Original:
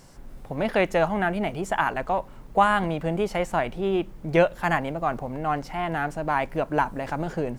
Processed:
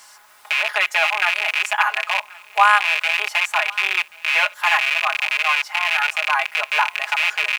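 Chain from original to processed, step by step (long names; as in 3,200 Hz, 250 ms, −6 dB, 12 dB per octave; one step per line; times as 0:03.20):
loose part that buzzes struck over −36 dBFS, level −13 dBFS
high-pass filter 930 Hz 24 dB per octave
comb filter 4.8 ms, depth 89%
in parallel at −2.5 dB: downward compressor 4 to 1, threshold −41 dBFS, peak gain reduction 22 dB
on the sum: bit reduction 10 bits
on a send: single-tap delay 1,083 ms −23.5 dB
on the sum: level +4 dB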